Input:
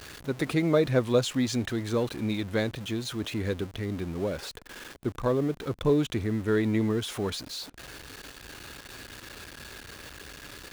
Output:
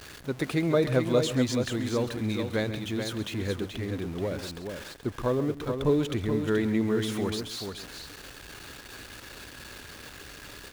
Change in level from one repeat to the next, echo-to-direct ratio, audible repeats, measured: repeats not evenly spaced, −5.5 dB, 3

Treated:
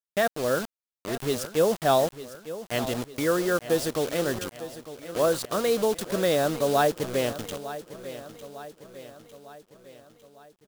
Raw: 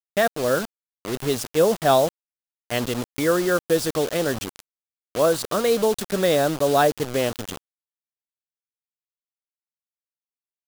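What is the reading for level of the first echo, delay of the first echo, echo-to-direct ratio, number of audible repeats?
−14.0 dB, 903 ms, −12.5 dB, 4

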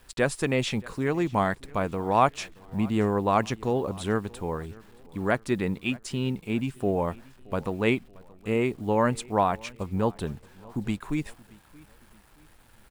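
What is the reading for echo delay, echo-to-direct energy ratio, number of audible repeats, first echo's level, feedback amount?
626 ms, −22.5 dB, 2, −23.5 dB, 41%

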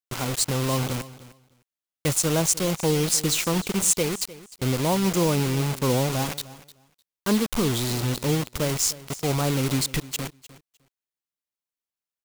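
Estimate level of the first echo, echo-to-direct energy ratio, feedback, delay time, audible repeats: −18.0 dB, −18.0 dB, 16%, 304 ms, 2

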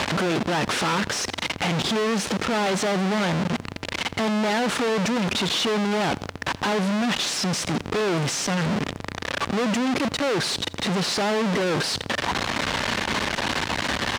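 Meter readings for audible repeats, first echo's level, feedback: 2, −22.0 dB, 38%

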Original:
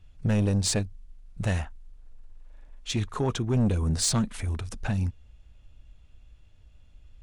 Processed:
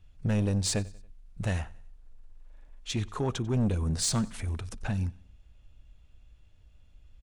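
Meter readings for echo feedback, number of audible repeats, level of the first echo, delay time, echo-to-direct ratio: 45%, 2, −22.5 dB, 93 ms, −21.5 dB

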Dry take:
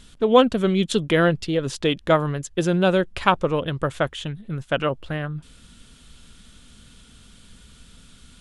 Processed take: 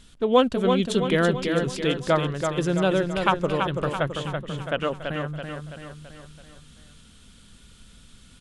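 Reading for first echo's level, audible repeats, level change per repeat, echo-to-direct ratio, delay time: −5.5 dB, 5, −5.5 dB, −4.0 dB, 332 ms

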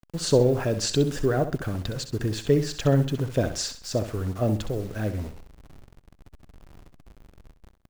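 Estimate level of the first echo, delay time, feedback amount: −10.5 dB, 65 ms, 33%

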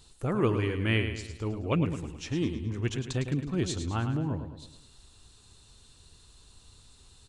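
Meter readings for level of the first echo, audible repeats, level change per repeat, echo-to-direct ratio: −8.5 dB, 5, −6.5 dB, −7.5 dB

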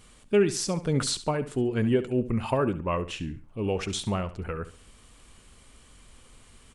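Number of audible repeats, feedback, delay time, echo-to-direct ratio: 2, 28%, 69 ms, −13.5 dB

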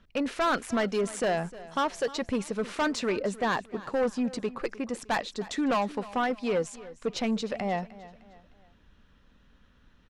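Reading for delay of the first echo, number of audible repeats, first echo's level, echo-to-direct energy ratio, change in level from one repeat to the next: 306 ms, 3, −18.0 dB, −17.5 dB, −8.0 dB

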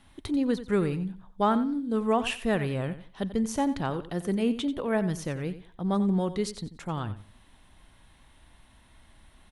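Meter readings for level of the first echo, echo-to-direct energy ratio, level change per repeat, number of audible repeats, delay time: −13.5 dB, −13.5 dB, −13.0 dB, 2, 90 ms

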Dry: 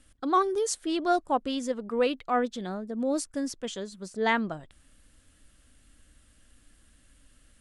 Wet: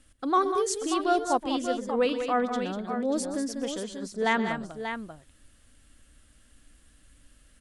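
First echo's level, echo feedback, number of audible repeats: −15.0 dB, repeats not evenly spaced, 3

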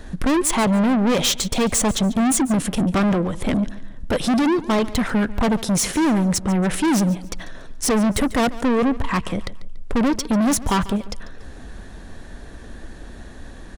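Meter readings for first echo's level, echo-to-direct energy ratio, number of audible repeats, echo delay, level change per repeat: −18.0 dB, −17.5 dB, 2, 143 ms, −8.5 dB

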